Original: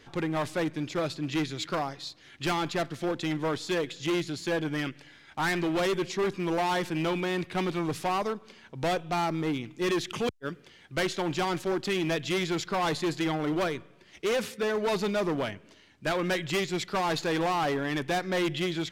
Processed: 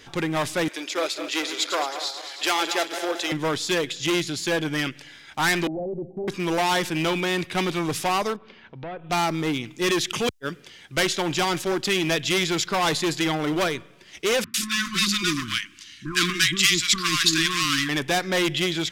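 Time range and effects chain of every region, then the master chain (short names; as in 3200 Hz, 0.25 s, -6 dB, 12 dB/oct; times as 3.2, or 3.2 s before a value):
0.68–3.32 regenerating reverse delay 0.11 s, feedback 66%, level -9 dB + HPF 360 Hz 24 dB/oct + mismatched tape noise reduction encoder only
5.67–6.28 rippled Chebyshev low-pass 810 Hz, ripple 3 dB + compressor 2.5:1, threshold -32 dBFS
8.36–9.1 treble ducked by the level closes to 2100 Hz, closed at -27.5 dBFS + air absorption 320 m + compressor 2.5:1, threshold -42 dBFS
14.44–17.89 brick-wall FIR band-stop 370–1000 Hz + bell 5600 Hz +7 dB 2.8 oct + bands offset in time lows, highs 0.1 s, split 970 Hz
whole clip: high shelf 2200 Hz +9 dB; notch 4300 Hz, Q 21; gain +3.5 dB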